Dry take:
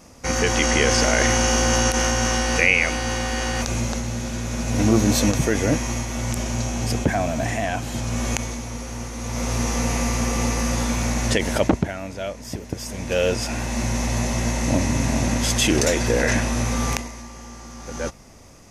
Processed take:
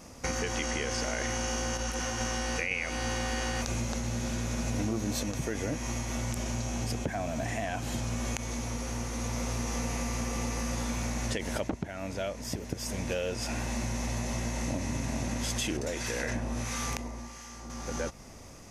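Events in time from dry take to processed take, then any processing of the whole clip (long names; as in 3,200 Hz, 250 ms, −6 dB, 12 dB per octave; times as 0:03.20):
0:01.77–0:02.21: micro pitch shift up and down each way 26 cents
0:02.71–0:05.23: clip gain +5.5 dB
0:15.77–0:17.70: two-band tremolo in antiphase 1.5 Hz, crossover 1,100 Hz
whole clip: downward compressor, threshold −28 dBFS; level −1.5 dB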